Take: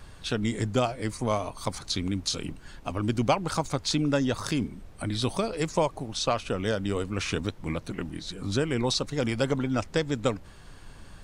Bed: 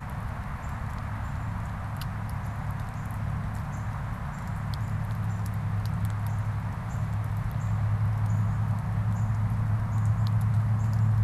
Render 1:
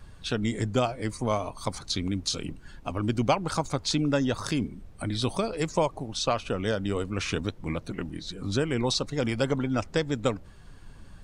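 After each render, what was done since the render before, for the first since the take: noise reduction 6 dB, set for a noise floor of -48 dBFS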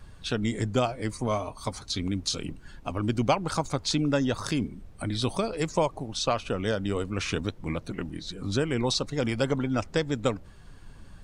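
1.27–1.99 s: comb of notches 170 Hz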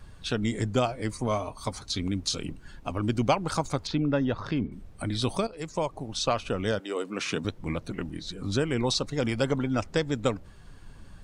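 3.87–4.72 s: distance through air 280 m; 5.47–6.15 s: fade in, from -12.5 dB; 6.78–7.43 s: high-pass 420 Hz -> 110 Hz 24 dB/octave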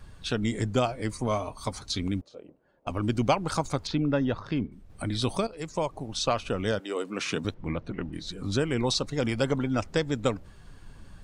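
2.21–2.87 s: band-pass filter 560 Hz, Q 3.5; 4.39–4.90 s: upward expansion, over -38 dBFS; 7.54–8.13 s: Bessel low-pass 2.6 kHz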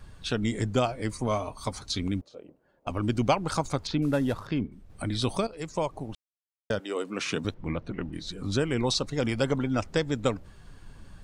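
4.02–4.47 s: CVSD coder 64 kbps; 6.15–6.70 s: mute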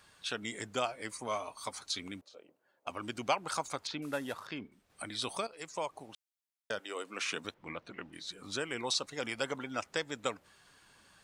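high-pass 1.4 kHz 6 dB/octave; dynamic bell 4.7 kHz, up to -4 dB, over -50 dBFS, Q 1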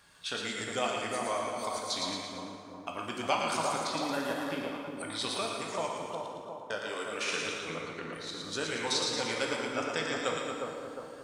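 on a send: two-band feedback delay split 1.2 kHz, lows 356 ms, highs 113 ms, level -3.5 dB; on the sum: plate-style reverb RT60 1.8 s, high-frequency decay 0.7×, DRR 0.5 dB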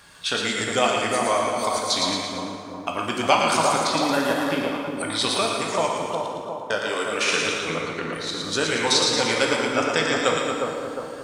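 trim +11 dB

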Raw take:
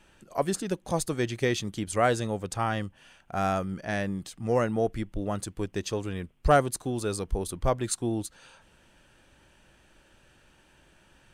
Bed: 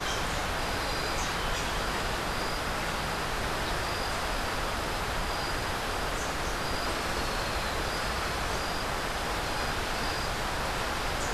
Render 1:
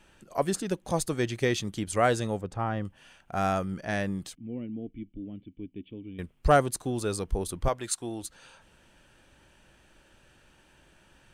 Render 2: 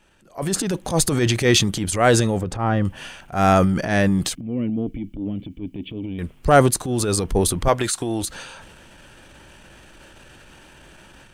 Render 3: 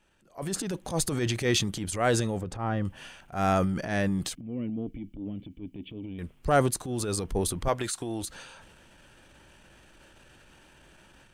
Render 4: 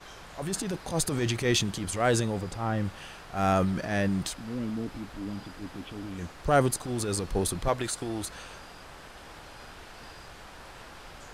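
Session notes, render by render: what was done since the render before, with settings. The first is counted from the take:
2.41–2.85 s: low-pass 1 kHz 6 dB/octave; 4.35–6.19 s: cascade formant filter i; 7.68–8.23 s: bass shelf 400 Hz -11 dB
level rider gain up to 13 dB; transient shaper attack -9 dB, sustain +7 dB
trim -9 dB
add bed -16 dB

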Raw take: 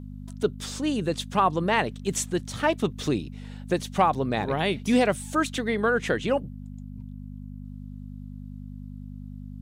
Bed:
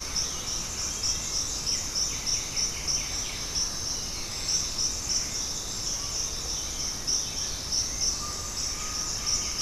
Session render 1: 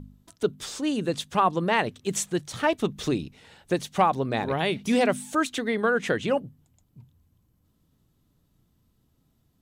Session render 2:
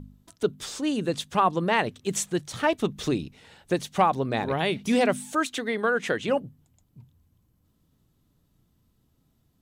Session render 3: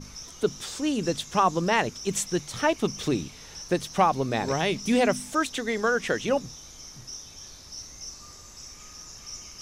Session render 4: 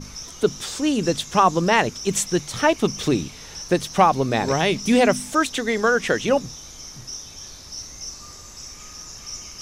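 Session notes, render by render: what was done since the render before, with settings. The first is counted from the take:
de-hum 50 Hz, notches 5
5.32–6.28 s: bass shelf 220 Hz -7 dB
add bed -13 dB
trim +5.5 dB

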